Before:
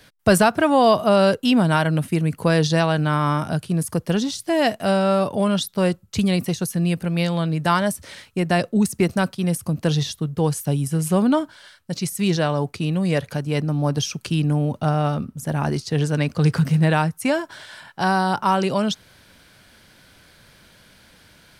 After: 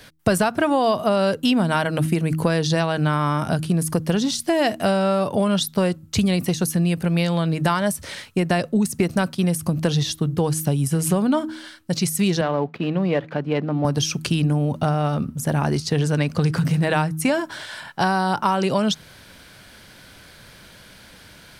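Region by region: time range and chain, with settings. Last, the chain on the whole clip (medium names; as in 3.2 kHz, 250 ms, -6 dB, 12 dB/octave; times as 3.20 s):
12.41–13.85 s: dead-time distortion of 0.09 ms + high-pass 220 Hz + distance through air 360 m
whole clip: de-hum 78.88 Hz, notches 4; compression 5:1, threshold -22 dBFS; trim +5.5 dB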